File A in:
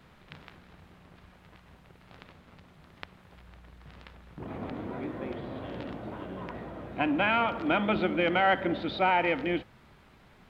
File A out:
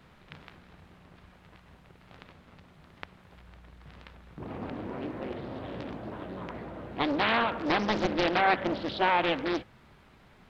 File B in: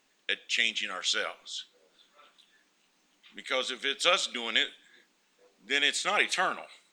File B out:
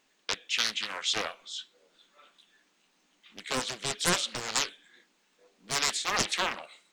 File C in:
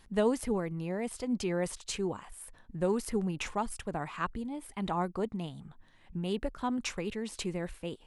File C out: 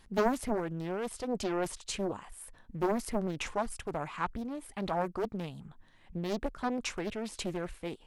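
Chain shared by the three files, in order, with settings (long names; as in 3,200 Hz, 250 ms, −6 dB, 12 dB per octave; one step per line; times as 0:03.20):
highs frequency-modulated by the lows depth 0.94 ms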